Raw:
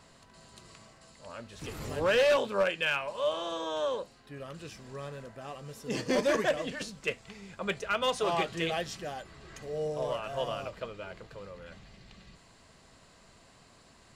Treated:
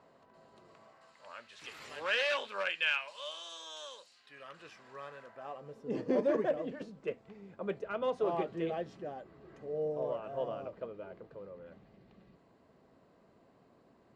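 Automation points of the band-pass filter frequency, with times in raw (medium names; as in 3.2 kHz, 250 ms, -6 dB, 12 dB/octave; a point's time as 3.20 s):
band-pass filter, Q 0.89
0.71 s 550 Hz
1.50 s 2.4 kHz
2.89 s 2.4 kHz
3.42 s 6.1 kHz
3.98 s 6.1 kHz
4.59 s 1.3 kHz
5.25 s 1.3 kHz
5.84 s 360 Hz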